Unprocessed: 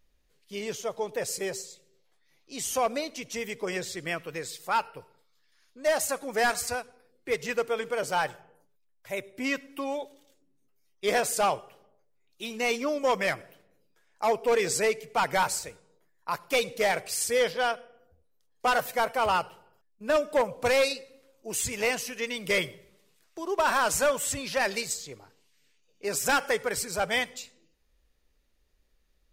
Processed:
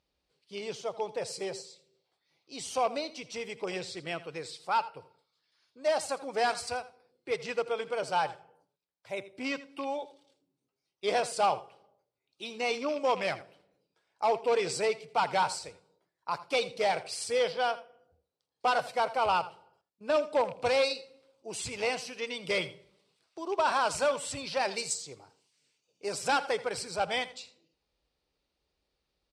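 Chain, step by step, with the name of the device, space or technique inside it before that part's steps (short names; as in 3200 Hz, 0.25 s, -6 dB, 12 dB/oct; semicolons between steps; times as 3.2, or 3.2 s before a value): car door speaker with a rattle (rattling part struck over -39 dBFS, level -30 dBFS; speaker cabinet 87–8300 Hz, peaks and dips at 220 Hz -5 dB, 820 Hz +4 dB, 1800 Hz -7 dB, 4400 Hz +4 dB, 6700 Hz -9 dB); 24.78–26.13 resonant high shelf 5300 Hz +6.5 dB, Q 1.5; echo 82 ms -17 dB; gain -3 dB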